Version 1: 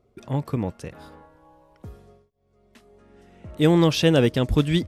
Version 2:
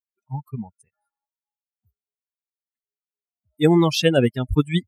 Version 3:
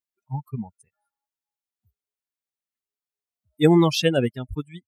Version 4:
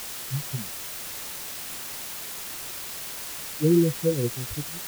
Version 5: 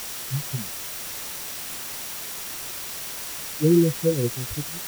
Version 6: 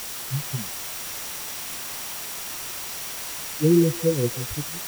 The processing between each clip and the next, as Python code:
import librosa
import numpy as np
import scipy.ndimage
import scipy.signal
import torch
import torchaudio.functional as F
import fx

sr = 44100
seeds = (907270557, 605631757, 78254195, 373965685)

y1 = fx.bin_expand(x, sr, power=3.0)
y1 = fx.low_shelf(y1, sr, hz=75.0, db=-7.5)
y1 = y1 * 10.0 ** (6.0 / 20.0)
y2 = fx.fade_out_tail(y1, sr, length_s=1.08)
y3 = scipy.signal.sosfilt(scipy.signal.cheby1(6, 9, 510.0, 'lowpass', fs=sr, output='sos'), y2)
y3 = fx.quant_dither(y3, sr, seeds[0], bits=6, dither='triangular')
y4 = y3 + 10.0 ** (-49.0 / 20.0) * np.sin(2.0 * np.pi * 5700.0 * np.arange(len(y3)) / sr)
y4 = y4 * 10.0 ** (2.0 / 20.0)
y5 = fx.echo_stepped(y4, sr, ms=162, hz=940.0, octaves=1.4, feedback_pct=70, wet_db=-1)